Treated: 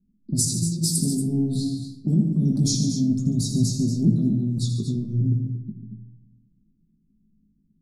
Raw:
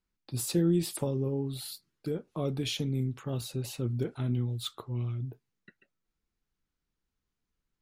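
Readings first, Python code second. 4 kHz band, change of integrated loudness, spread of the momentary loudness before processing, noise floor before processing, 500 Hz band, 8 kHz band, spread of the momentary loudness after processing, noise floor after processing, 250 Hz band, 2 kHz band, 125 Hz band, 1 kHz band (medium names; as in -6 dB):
+6.5 dB, +9.5 dB, 10 LU, under -85 dBFS, -3.5 dB, +14.0 dB, 8 LU, -66 dBFS, +11.0 dB, under -20 dB, +9.5 dB, under -10 dB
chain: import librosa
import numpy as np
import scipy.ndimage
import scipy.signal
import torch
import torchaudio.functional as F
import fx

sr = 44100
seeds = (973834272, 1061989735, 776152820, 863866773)

p1 = scipy.signal.sosfilt(scipy.signal.cheby2(4, 40, [520.0, 3100.0], 'bandstop', fs=sr, output='sos'), x)
p2 = fx.level_steps(p1, sr, step_db=9)
p3 = p1 + (p2 * librosa.db_to_amplitude(1.5))
p4 = fx.peak_eq(p3, sr, hz=200.0, db=10.5, octaves=1.1)
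p5 = fx.env_lowpass(p4, sr, base_hz=640.0, full_db=-19.5)
p6 = fx.over_compress(p5, sr, threshold_db=-27.0, ratio=-1.0)
p7 = scipy.signal.sosfilt(scipy.signal.butter(2, 7900.0, 'lowpass', fs=sr, output='sos'), p6)
p8 = fx.low_shelf(p7, sr, hz=150.0, db=-8.5)
p9 = fx.doubler(p8, sr, ms=19.0, db=-6.0)
p10 = fx.echo_multitap(p9, sr, ms=(82, 143, 228, 238), db=(-8.5, -11.5, -13.0, -11.5))
p11 = fx.room_shoebox(p10, sr, seeds[0], volume_m3=2800.0, walls='furnished', distance_m=1.3)
y = p11 * librosa.db_to_amplitude(8.0)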